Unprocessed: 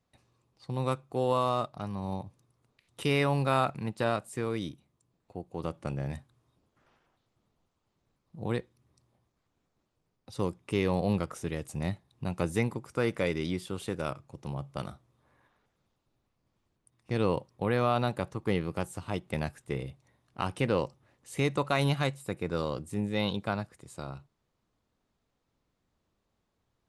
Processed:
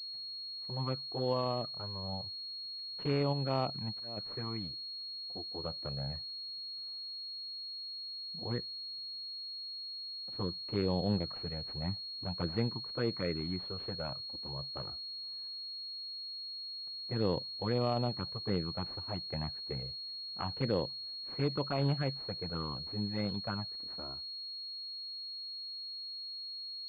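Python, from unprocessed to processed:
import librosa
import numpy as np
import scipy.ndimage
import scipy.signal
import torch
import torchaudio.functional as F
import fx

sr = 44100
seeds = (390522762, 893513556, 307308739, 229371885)

y = fx.env_flanger(x, sr, rest_ms=6.2, full_db=-23.0)
y = fx.auto_swell(y, sr, attack_ms=463.0, at=(3.32, 4.16), fade=0.02)
y = fx.pwm(y, sr, carrier_hz=4300.0)
y = y * 10.0 ** (-3.0 / 20.0)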